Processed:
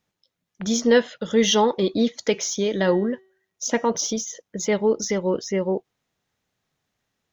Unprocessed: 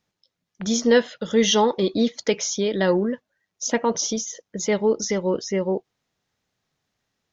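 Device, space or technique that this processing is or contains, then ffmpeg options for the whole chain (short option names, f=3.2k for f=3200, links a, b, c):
exciter from parts: -filter_complex "[0:a]asplit=2[a][b];[b]highpass=f=4.5k:w=0.5412,highpass=f=4.5k:w=1.3066,asoftclip=type=tanh:threshold=-32.5dB,volume=-9dB[c];[a][c]amix=inputs=2:normalize=0,asettb=1/sr,asplit=3[d][e][f];[d]atrim=end=2.194[g];[e]atrim=start=2.19:end=3.88,asetpts=PTS-STARTPTS,afade=t=in:d=0.004:c=qsin,afade=t=out:st=1.686:d=0.004:c=qsin,bandreject=f=380:t=h:w=4,bandreject=f=760:t=h:w=4,bandreject=f=1.14k:t=h:w=4,bandreject=f=1.52k:t=h:w=4,bandreject=f=1.9k:t=h:w=4,bandreject=f=2.28k:t=h:w=4,bandreject=f=2.66k:t=h:w=4,bandreject=f=3.04k:t=h:w=4,bandreject=f=3.42k:t=h:w=4,bandreject=f=3.8k:t=h:w=4,bandreject=f=4.18k:t=h:w=4,bandreject=f=4.56k:t=h:w=4,bandreject=f=4.94k:t=h:w=4,bandreject=f=5.32k:t=h:w=4,bandreject=f=5.7k:t=h:w=4,bandreject=f=6.08k:t=h:w=4,bandreject=f=6.46k:t=h:w=4,bandreject=f=6.84k:t=h:w=4,bandreject=f=7.22k:t=h:w=4,bandreject=f=7.6k:t=h:w=4,bandreject=f=7.98k:t=h:w=4,bandreject=f=8.36k:t=h:w=4,bandreject=f=8.74k:t=h:w=4,bandreject=f=9.12k:t=h:w=4,bandreject=f=9.5k:t=h:w=4,bandreject=f=9.88k:t=h:w=4,bandreject=f=10.26k:t=h:w=4[h];[f]atrim=start=3.876[i];[g][h]acrossfade=d=0.004:c1=hsin:c2=qsin[j];[j][i]acrossfade=d=0.004:c1=qsin:c2=hsin"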